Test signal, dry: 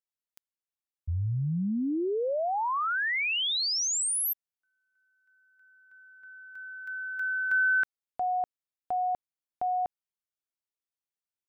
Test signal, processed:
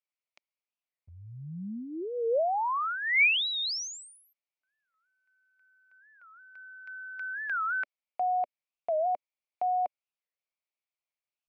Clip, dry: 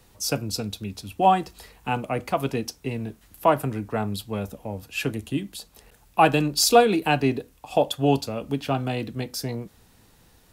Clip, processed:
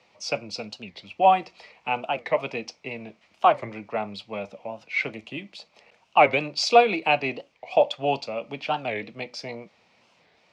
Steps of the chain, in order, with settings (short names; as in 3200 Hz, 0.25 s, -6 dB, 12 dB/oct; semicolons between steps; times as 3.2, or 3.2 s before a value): speaker cabinet 280–5000 Hz, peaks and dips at 280 Hz -9 dB, 410 Hz -6 dB, 600 Hz +5 dB, 1600 Hz -8 dB, 2300 Hz +10 dB, 3700 Hz -4 dB; record warp 45 rpm, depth 250 cents